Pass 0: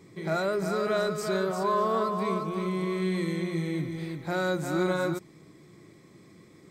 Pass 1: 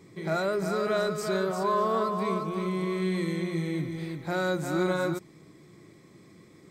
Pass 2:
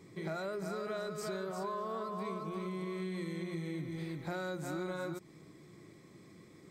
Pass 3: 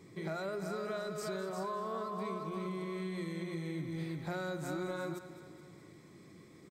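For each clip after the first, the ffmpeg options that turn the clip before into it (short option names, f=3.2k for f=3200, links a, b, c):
-af anull
-af "acompressor=threshold=-33dB:ratio=6,volume=-3dB"
-af "aecho=1:1:209|418|627|836|1045|1254:0.211|0.118|0.0663|0.0371|0.0208|0.0116"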